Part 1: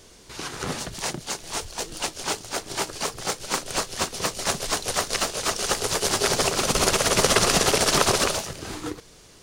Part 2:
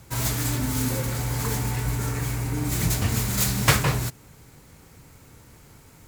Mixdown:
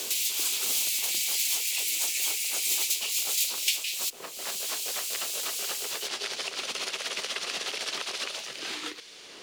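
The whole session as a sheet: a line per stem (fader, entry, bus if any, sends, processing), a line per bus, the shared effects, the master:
-13.0 dB, 0.00 s, no send, three-band isolator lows -22 dB, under 240 Hz, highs -12 dB, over 4100 Hz; compressor 1.5:1, threshold -33 dBFS, peak gain reduction 6.5 dB
+0.5 dB, 0.00 s, no send, steep high-pass 2600 Hz 48 dB/oct; AGC gain up to 14.5 dB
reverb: off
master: high shelf 3800 Hz -8.5 dB; three-band squash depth 100%

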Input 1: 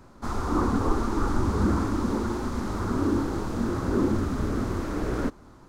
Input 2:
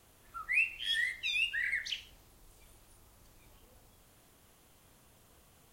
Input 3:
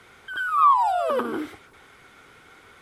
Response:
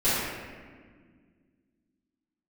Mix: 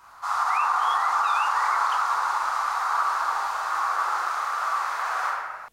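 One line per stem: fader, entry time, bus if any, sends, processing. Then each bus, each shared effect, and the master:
-2.0 dB, 0.00 s, send -5 dB, elliptic high-pass 760 Hz, stop band 70 dB; bell 1200 Hz +9 dB 0.49 oct
-3.5 dB, 0.00 s, no send, dry
off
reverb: on, RT60 1.7 s, pre-delay 4 ms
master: limiter -14 dBFS, peak gain reduction 5.5 dB

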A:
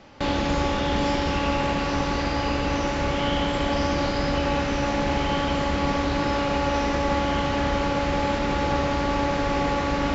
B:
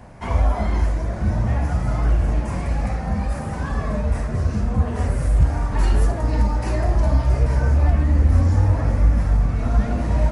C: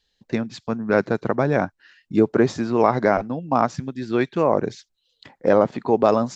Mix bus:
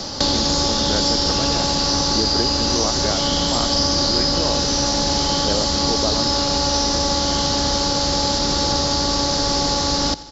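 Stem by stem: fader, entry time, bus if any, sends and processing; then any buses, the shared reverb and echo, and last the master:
+1.5 dB, 0.00 s, no send, echo send -19 dB, resonant high shelf 3400 Hz +12.5 dB, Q 3
off
-7.5 dB, 0.00 s, no send, no echo send, dry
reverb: off
echo: feedback echo 87 ms, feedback 57%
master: three-band squash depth 70%

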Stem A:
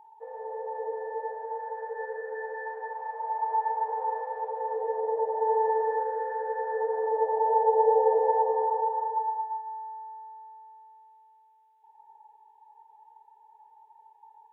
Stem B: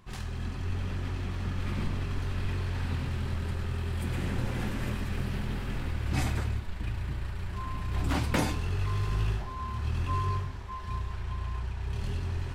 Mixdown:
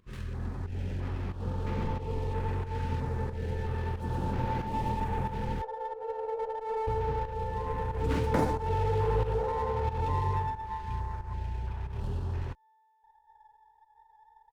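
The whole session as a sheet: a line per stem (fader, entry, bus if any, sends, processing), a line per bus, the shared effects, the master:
-9.5 dB, 1.20 s, no send, slew limiter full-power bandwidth 41 Hz
-0.5 dB, 0.00 s, muted 5.62–6.87, no send, high shelf 3800 Hz -8 dB; stepped notch 3 Hz 810–7900 Hz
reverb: off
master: small resonant body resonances 490/860 Hz, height 6 dB, ringing for 25 ms; pump 91 bpm, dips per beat 1, -11 dB, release 0.201 s; running maximum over 5 samples

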